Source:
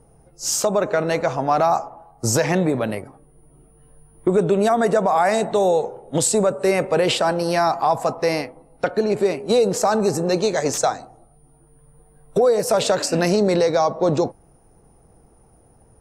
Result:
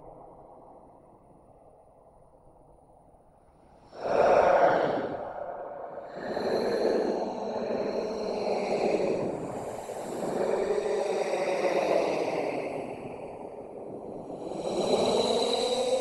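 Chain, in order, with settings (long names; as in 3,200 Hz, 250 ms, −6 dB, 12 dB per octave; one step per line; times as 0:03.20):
extreme stretch with random phases 16×, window 0.05 s, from 0:08.57
flat-topped bell 770 Hz +8.5 dB 1.3 octaves
harmonic and percussive parts rebalanced harmonic −18 dB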